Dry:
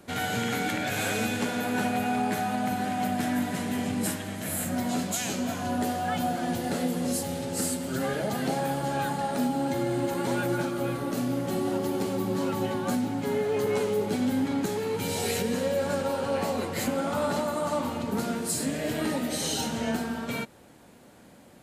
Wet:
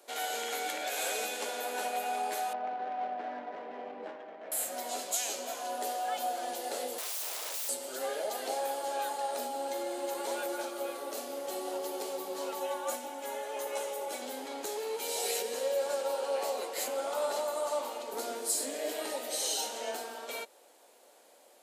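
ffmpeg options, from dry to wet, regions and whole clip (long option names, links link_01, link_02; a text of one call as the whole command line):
ffmpeg -i in.wav -filter_complex "[0:a]asettb=1/sr,asplit=3[link_01][link_02][link_03];[link_01]atrim=end=2.534[link_04];[link_02]atrim=start=2.53:end=4.52,asetpts=PTS-STARTPTS,afade=type=in:duration=0.004:curve=qsin,afade=type=out:start_time=1.986:duration=0.004:curve=qsin,lowpass=2300,adynamicsmooth=sensitivity=2:basefreq=1600[link_05];[link_03]atrim=start=4.516[link_06];[link_04][link_05]acrossfade=duration=0.004:curve1=hsin:curve2=qsin[link_07];[link_07][link_06]acrossfade=duration=0.004:curve1=qsin:curve2=hsin,asettb=1/sr,asplit=3[link_08][link_09][link_10];[link_08]atrim=end=6.984[link_11];[link_09]atrim=start=6.98:end=7.69,asetpts=PTS-STARTPTS,afade=type=in:duration=0.004:curve=qsin,afade=type=out:start_time=0.706:duration=0.004:curve=qsin,equalizer=frequency=670:width=5.9:gain=12,aeval=exprs='(mod(33.5*val(0)+1,2)-1)/33.5':channel_layout=same[link_12];[link_10]atrim=start=7.686[link_13];[link_11][link_12]acrossfade=duration=0.004:curve1=hsin:curve2=qsin[link_14];[link_14][link_13]acrossfade=duration=0.004:curve1=qsin:curve2=hsin,asettb=1/sr,asplit=3[link_15][link_16][link_17];[link_15]atrim=end=12.604[link_18];[link_16]atrim=start=12.6:end=14.22,asetpts=PTS-STARTPTS,afade=type=in:duration=0.004:curve=qsin,afade=type=out:start_time=1.616:duration=0.004:curve=qsin,highpass=frequency=390:poles=1,equalizer=frequency=4500:width_type=o:width=0.42:gain=-7,aecho=1:1:3.5:0.7,atrim=end_sample=71442[link_19];[link_17]atrim=start=14.216[link_20];[link_18][link_19]acrossfade=duration=0.004:curve1=hsin:curve2=qsin[link_21];[link_21][link_20]acrossfade=duration=0.004:curve1=qsin:curve2=hsin,asettb=1/sr,asplit=3[link_22][link_23][link_24];[link_22]atrim=end=18.164[link_25];[link_23]atrim=start=18.16:end=18.92,asetpts=PTS-STARTPTS,afade=type=in:duration=0.004:curve=qsin,afade=type=out:start_time=0.756:duration=0.004:curve=qsin,lowshelf=frequency=180:width_type=q:width=3:gain=-10,bandreject=frequency=2700:width=22[link_26];[link_24]atrim=start=18.916[link_27];[link_25][link_26]acrossfade=duration=0.004:curve1=hsin:curve2=qsin[link_28];[link_28][link_27]acrossfade=duration=0.004:curve1=qsin:curve2=hsin,highpass=frequency=480:width=0.5412,highpass=frequency=480:width=1.3066,equalizer=frequency=1600:width=0.77:gain=-8.5" out.wav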